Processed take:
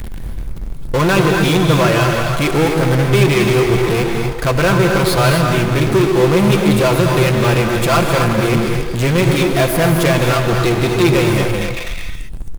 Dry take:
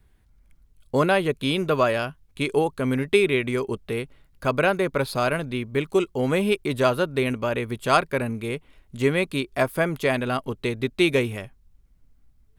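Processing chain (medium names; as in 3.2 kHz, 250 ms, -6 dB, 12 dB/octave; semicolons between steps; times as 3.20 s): bass shelf 120 Hz +10 dB; comb 5.9 ms, depth 70%; repeats whose band climbs or falls 122 ms, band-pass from 360 Hz, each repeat 0.7 oct, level -11.5 dB; power-law waveshaper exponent 0.35; gated-style reverb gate 290 ms rising, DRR 3 dB; trim -5 dB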